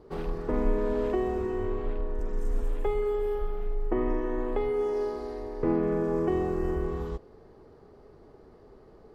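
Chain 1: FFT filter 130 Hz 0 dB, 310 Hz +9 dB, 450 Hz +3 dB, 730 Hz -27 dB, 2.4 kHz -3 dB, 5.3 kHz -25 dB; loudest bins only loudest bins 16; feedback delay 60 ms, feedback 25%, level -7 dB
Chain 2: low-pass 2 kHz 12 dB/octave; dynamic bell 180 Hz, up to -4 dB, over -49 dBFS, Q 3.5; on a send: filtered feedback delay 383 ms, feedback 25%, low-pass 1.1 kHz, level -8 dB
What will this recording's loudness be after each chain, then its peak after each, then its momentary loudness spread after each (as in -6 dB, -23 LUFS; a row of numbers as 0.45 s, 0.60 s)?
-24.0 LUFS, -30.0 LUFS; -8.5 dBFS, -15.0 dBFS; 11 LU, 8 LU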